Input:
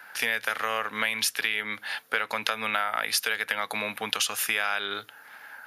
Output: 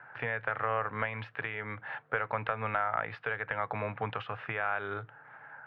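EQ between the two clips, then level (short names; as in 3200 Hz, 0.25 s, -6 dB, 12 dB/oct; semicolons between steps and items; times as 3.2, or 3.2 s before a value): LPF 1500 Hz 12 dB/oct; air absorption 450 m; resonant low shelf 170 Hz +7.5 dB, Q 3; +2.0 dB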